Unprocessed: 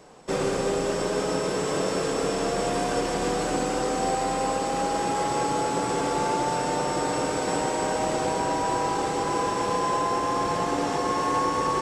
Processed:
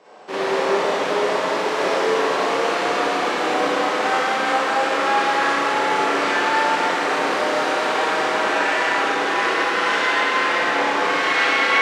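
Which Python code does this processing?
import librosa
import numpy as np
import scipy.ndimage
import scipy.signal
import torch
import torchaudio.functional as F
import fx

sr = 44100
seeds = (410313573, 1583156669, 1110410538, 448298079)

y = fx.self_delay(x, sr, depth_ms=0.6)
y = fx.bandpass_edges(y, sr, low_hz=370.0, high_hz=4200.0)
y = fx.rev_schroeder(y, sr, rt60_s=1.7, comb_ms=28, drr_db=-8.5)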